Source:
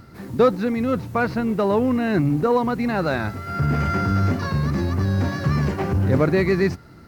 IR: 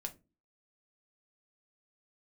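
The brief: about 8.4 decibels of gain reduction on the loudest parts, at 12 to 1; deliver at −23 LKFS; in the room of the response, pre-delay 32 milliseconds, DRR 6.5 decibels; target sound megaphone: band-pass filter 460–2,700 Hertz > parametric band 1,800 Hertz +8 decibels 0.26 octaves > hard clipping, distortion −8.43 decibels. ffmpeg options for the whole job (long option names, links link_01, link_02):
-filter_complex "[0:a]acompressor=threshold=-21dB:ratio=12,asplit=2[link_01][link_02];[1:a]atrim=start_sample=2205,adelay=32[link_03];[link_02][link_03]afir=irnorm=-1:irlink=0,volume=-4.5dB[link_04];[link_01][link_04]amix=inputs=2:normalize=0,highpass=460,lowpass=2700,equalizer=frequency=1800:width_type=o:width=0.26:gain=8,asoftclip=type=hard:threshold=-29dB,volume=10dB"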